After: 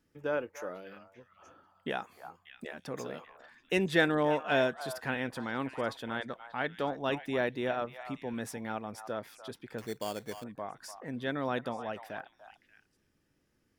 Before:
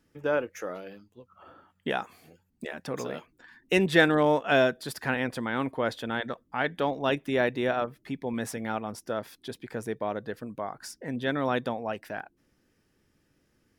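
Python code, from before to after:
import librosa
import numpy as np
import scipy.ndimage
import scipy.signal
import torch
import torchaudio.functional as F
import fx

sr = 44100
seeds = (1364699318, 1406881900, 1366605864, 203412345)

y = fx.echo_stepped(x, sr, ms=294, hz=960.0, octaves=1.4, feedback_pct=70, wet_db=-8)
y = fx.sample_hold(y, sr, seeds[0], rate_hz=3900.0, jitter_pct=0, at=(9.78, 10.44))
y = y * 10.0 ** (-5.5 / 20.0)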